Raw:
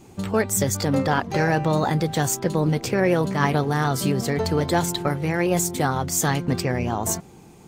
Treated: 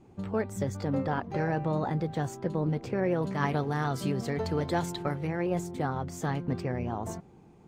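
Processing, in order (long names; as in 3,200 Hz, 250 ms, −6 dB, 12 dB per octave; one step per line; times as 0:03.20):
low-pass filter 1,200 Hz 6 dB per octave, from 0:03.22 3,400 Hz, from 0:05.27 1,300 Hz
level −7.5 dB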